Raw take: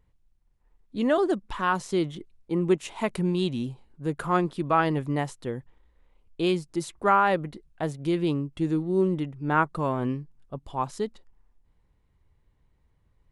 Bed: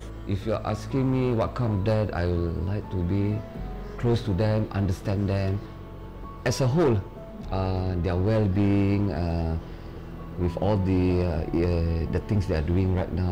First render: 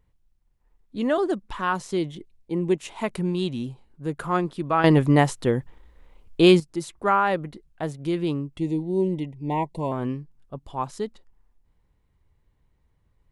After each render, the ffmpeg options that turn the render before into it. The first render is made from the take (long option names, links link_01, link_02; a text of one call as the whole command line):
ffmpeg -i in.wav -filter_complex "[0:a]asettb=1/sr,asplit=3[link_01][link_02][link_03];[link_01]atrim=end=1.974[link_04];[link_02]atrim=start=1.97:end=2.78,asetpts=PTS-STARTPTS,afade=type=in:duration=0.004:curve=qsin,afade=type=out:start_time=0.806:duration=0.004:curve=qsin,equalizer=frequency=1300:width_type=o:width=0.26:gain=-14.5[link_05];[link_03]atrim=start=2.776[link_06];[link_04][link_05]acrossfade=duration=0.004:curve1=hsin:curve2=qsin[link_07];[link_07][link_06]acrossfade=duration=0.004:curve1=qsin:curve2=hsin,asettb=1/sr,asplit=3[link_08][link_09][link_10];[link_08]atrim=end=8.584[link_11];[link_09]atrim=start=8.58:end=9.92,asetpts=PTS-STARTPTS,afade=type=in:duration=0.004:curve=qsin,afade=type=out:start_time=1.336:duration=0.004:curve=qsin,asuperstop=centerf=1400:order=20:qfactor=1.7[link_12];[link_10]atrim=start=9.916[link_13];[link_11][link_12]acrossfade=duration=0.004:curve1=hsin:curve2=qsin[link_14];[link_14][link_13]acrossfade=duration=0.004:curve1=qsin:curve2=hsin,asplit=3[link_15][link_16][link_17];[link_15]atrim=end=4.842[link_18];[link_16]atrim=start=4.838:end=6.602,asetpts=PTS-STARTPTS,volume=10dB[link_19];[link_17]atrim=start=6.598[link_20];[link_18][link_19]acrossfade=duration=0.004:curve1=hsin:curve2=hsin[link_21];[link_21][link_20]acrossfade=duration=0.004:curve1=hsin:curve2=hsin" out.wav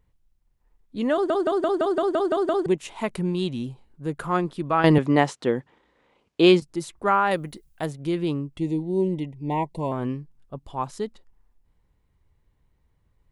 ffmpeg -i in.wav -filter_complex "[0:a]asettb=1/sr,asplit=3[link_01][link_02][link_03];[link_01]atrim=end=4.984[link_04];[link_02]atrim=start=4.98:end=6.62,asetpts=PTS-STARTPTS,afade=type=in:duration=0.004:curve=qsin,afade=type=out:start_time=1.636:duration=0.004:curve=qsin,highpass=200,lowpass=6400[link_05];[link_03]atrim=start=6.616[link_06];[link_04][link_05]acrossfade=duration=0.004:curve1=hsin:curve2=qsin[link_07];[link_07][link_06]acrossfade=duration=0.004:curve1=qsin:curve2=hsin,asettb=1/sr,asplit=3[link_08][link_09][link_10];[link_08]atrim=end=7.314[link_11];[link_09]atrim=start=7.31:end=7.86,asetpts=PTS-STARTPTS,afade=type=in:duration=0.004:curve=qsin,afade=type=out:start_time=0.546:duration=0.004:curve=qsin,aemphasis=mode=production:type=75kf[link_12];[link_10]atrim=start=7.856[link_13];[link_11][link_12]acrossfade=duration=0.004:curve1=hsin:curve2=qsin[link_14];[link_14][link_13]acrossfade=duration=0.004:curve1=qsin:curve2=hsin,asplit=10[link_15][link_16][link_17][link_18][link_19][link_20][link_21][link_22][link_23][link_24];[link_15]atrim=end=1.302[link_25];[link_16]atrim=start=1.128:end=1.302[link_26];[link_17]atrim=start=1.128:end=1.302[link_27];[link_18]atrim=start=1.128:end=1.302[link_28];[link_19]atrim=start=1.128:end=1.302[link_29];[link_20]atrim=start=1.128:end=1.302[link_30];[link_21]atrim=start=1.128:end=1.302[link_31];[link_22]atrim=start=1.128:end=1.302[link_32];[link_23]atrim=start=1.128:end=1.302[link_33];[link_24]atrim=start=2.658[link_34];[link_25][link_26]acrossfade=duration=0.004:curve1=hsin:curve2=hsin[link_35];[link_35][link_27]acrossfade=duration=0.004:curve1=hsin:curve2=hsin[link_36];[link_36][link_28]acrossfade=duration=0.004:curve1=hsin:curve2=hsin[link_37];[link_37][link_29]acrossfade=duration=0.004:curve1=hsin:curve2=hsin[link_38];[link_38][link_30]acrossfade=duration=0.004:curve1=hsin:curve2=hsin[link_39];[link_39][link_31]acrossfade=duration=0.004:curve1=hsin:curve2=hsin[link_40];[link_40][link_32]acrossfade=duration=0.004:curve1=hsin:curve2=hsin[link_41];[link_41][link_33]acrossfade=duration=0.004:curve1=hsin:curve2=hsin[link_42];[link_42][link_34]acrossfade=duration=0.004:curve1=hsin:curve2=hsin" out.wav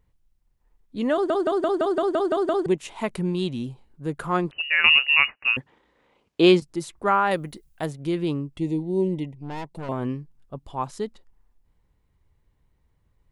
ffmpeg -i in.wav -filter_complex "[0:a]asettb=1/sr,asplit=3[link_01][link_02][link_03];[link_01]atrim=end=4.514[link_04];[link_02]atrim=start=4.51:end=5.57,asetpts=PTS-STARTPTS,afade=type=in:duration=0.004:curve=qsin,afade=type=out:start_time=1.056:duration=0.004:curve=qsin,lowpass=frequency=2600:width_type=q:width=0.5098,lowpass=frequency=2600:width_type=q:width=0.6013,lowpass=frequency=2600:width_type=q:width=0.9,lowpass=frequency=2600:width_type=q:width=2.563,afreqshift=-3000[link_05];[link_03]atrim=start=5.566[link_06];[link_04][link_05]acrossfade=duration=0.004:curve1=hsin:curve2=qsin[link_07];[link_07][link_06]acrossfade=duration=0.004:curve1=qsin:curve2=hsin,asettb=1/sr,asplit=3[link_08][link_09][link_10];[link_08]atrim=end=9.354[link_11];[link_09]atrim=start=9.35:end=9.89,asetpts=PTS-STARTPTS,afade=type=in:duration=0.004:curve=qsin,afade=type=out:start_time=0.536:duration=0.004:curve=qsin,aeval=exprs='(tanh(35.5*val(0)+0.7)-tanh(0.7))/35.5':channel_layout=same[link_12];[link_10]atrim=start=9.886[link_13];[link_11][link_12]acrossfade=duration=0.004:curve1=hsin:curve2=qsin[link_14];[link_14][link_13]acrossfade=duration=0.004:curve1=qsin:curve2=hsin" out.wav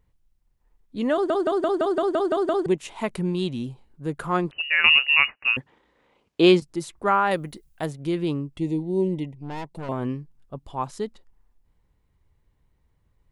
ffmpeg -i in.wav -af anull out.wav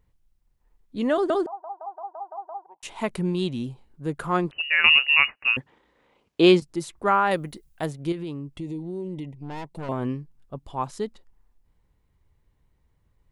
ffmpeg -i in.wav -filter_complex "[0:a]asettb=1/sr,asplit=3[link_01][link_02][link_03];[link_01]atrim=end=1.464[link_04];[link_02]atrim=start=1.46:end=2.83,asetpts=PTS-STARTPTS,afade=type=in:duration=0.004:curve=qsin,afade=type=out:start_time=1.366:duration=0.004:curve=qsin,asuperpass=centerf=860:order=4:qfactor=4.4[link_05];[link_03]atrim=start=2.826[link_06];[link_04][link_05]acrossfade=duration=0.004:curve1=hsin:curve2=qsin[link_07];[link_07][link_06]acrossfade=duration=0.004:curve1=qsin:curve2=hsin,asettb=1/sr,asplit=3[link_08][link_09][link_10];[link_08]atrim=end=8.124[link_11];[link_09]atrim=start=8.12:end=9.66,asetpts=PTS-STARTPTS,afade=type=in:duration=0.004:curve=qsin,afade=type=out:start_time=1.536:duration=0.004:curve=qsin,acompressor=threshold=-30dB:ratio=4:attack=3.2:release=140:knee=1:detection=peak[link_12];[link_10]atrim=start=9.656[link_13];[link_11][link_12]acrossfade=duration=0.004:curve1=hsin:curve2=qsin[link_14];[link_14][link_13]acrossfade=duration=0.004:curve1=qsin:curve2=hsin" out.wav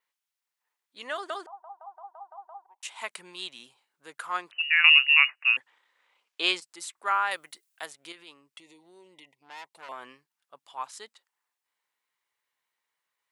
ffmpeg -i in.wav -af "highpass=1300,adynamicequalizer=threshold=0.002:dfrequency=7900:dqfactor=5:tfrequency=7900:tqfactor=5:attack=5:release=100:ratio=0.375:range=2.5:mode=boostabove:tftype=bell" out.wav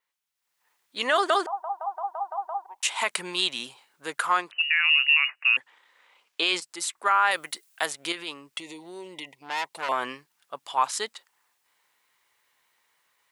ffmpeg -i in.wav -af "dynaudnorm=framelen=350:gausssize=3:maxgain=14dB,alimiter=limit=-11.5dB:level=0:latency=1:release=38" out.wav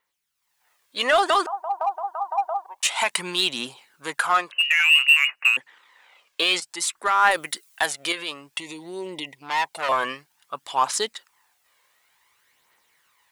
ffmpeg -i in.wav -filter_complex "[0:a]aphaser=in_gain=1:out_gain=1:delay=1.9:decay=0.43:speed=0.55:type=triangular,asplit=2[link_01][link_02];[link_02]volume=23dB,asoftclip=hard,volume=-23dB,volume=-3.5dB[link_03];[link_01][link_03]amix=inputs=2:normalize=0" out.wav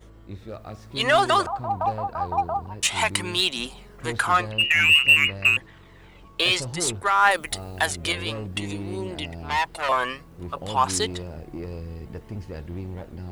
ffmpeg -i in.wav -i bed.wav -filter_complex "[1:a]volume=-10.5dB[link_01];[0:a][link_01]amix=inputs=2:normalize=0" out.wav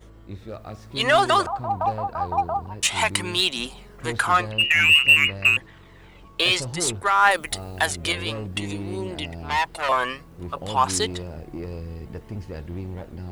ffmpeg -i in.wav -af "volume=1dB" out.wav